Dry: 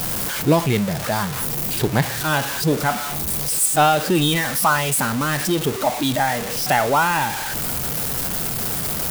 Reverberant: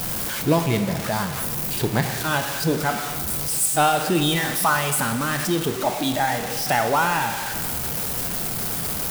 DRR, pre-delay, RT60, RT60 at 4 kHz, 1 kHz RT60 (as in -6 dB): 7.0 dB, 5 ms, 1.8 s, 1.7 s, 1.8 s